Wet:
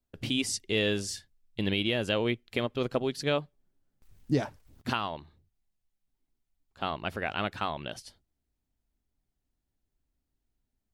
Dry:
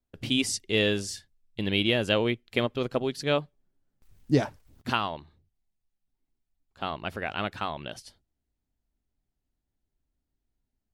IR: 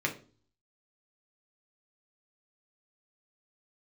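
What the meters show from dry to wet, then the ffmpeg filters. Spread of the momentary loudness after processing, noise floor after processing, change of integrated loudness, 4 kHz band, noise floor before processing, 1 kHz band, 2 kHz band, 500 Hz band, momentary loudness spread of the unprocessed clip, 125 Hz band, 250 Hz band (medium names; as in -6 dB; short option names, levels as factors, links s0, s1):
13 LU, -83 dBFS, -3.0 dB, -3.0 dB, -83 dBFS, -2.0 dB, -3.0 dB, -2.5 dB, 14 LU, -2.5 dB, -2.5 dB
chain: -af "alimiter=limit=0.168:level=0:latency=1:release=302"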